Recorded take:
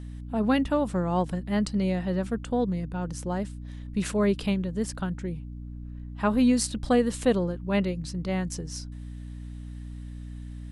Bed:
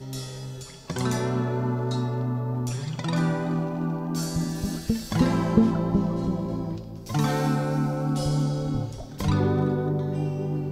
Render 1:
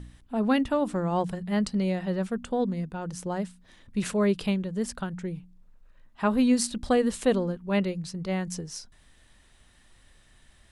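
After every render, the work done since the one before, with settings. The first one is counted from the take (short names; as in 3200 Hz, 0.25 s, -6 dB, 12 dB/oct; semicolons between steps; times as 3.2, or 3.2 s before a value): de-hum 60 Hz, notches 5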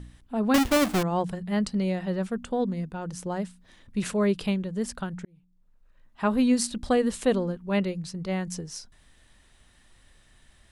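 0.54–1.03 half-waves squared off; 5.25–6.26 fade in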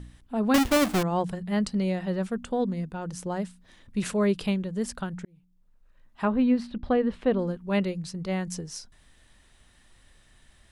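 6.25–7.39 air absorption 370 m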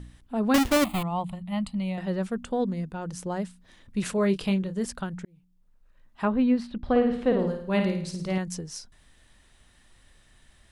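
0.84–1.98 fixed phaser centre 1600 Hz, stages 6; 4.15–4.85 doubler 26 ms -9 dB; 6.83–8.38 flutter echo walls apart 9.2 m, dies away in 0.57 s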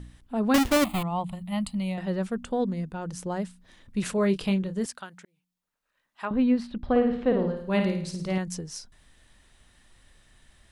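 1.32–1.94 high shelf 7100 Hz +12 dB; 4.86–6.31 HPF 1200 Hz 6 dB/oct; 6.86–7.57 air absorption 120 m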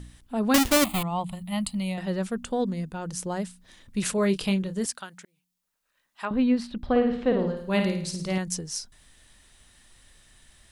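high shelf 3500 Hz +8.5 dB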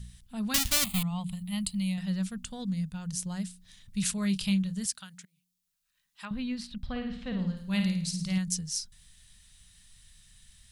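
EQ curve 190 Hz 0 dB, 320 Hz -23 dB, 3900 Hz 0 dB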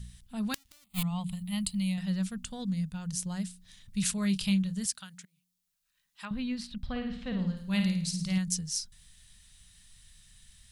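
flipped gate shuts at -11 dBFS, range -35 dB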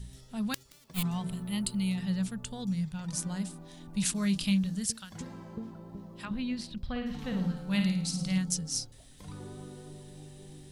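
add bed -21.5 dB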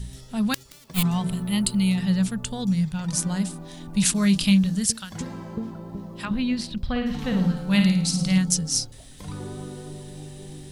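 gain +9 dB; limiter -1 dBFS, peak gain reduction 2.5 dB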